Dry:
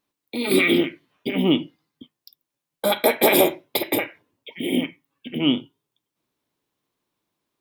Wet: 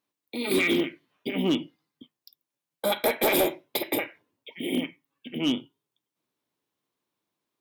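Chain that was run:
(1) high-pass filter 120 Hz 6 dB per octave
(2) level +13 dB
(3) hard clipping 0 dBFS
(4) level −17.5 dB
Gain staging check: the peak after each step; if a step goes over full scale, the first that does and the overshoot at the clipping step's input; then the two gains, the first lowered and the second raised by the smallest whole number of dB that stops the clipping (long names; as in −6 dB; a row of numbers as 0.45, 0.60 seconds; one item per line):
−3.0, +10.0, 0.0, −17.5 dBFS
step 2, 10.0 dB
step 2 +3 dB, step 4 −7.5 dB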